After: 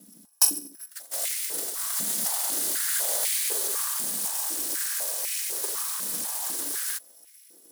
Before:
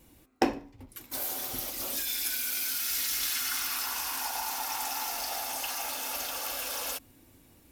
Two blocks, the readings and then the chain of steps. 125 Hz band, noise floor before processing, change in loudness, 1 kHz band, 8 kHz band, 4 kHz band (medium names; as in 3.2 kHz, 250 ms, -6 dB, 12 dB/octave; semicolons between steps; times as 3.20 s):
no reading, -59 dBFS, +5.0 dB, -5.5 dB, +8.0 dB, +0.5 dB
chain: bit-reversed sample order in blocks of 256 samples; fifteen-band graphic EQ 1 kHz -9 dB, 2.5 kHz -12 dB, 10 kHz +8 dB; ring modulator 240 Hz; step-sequenced high-pass 4 Hz 210–2200 Hz; trim +5 dB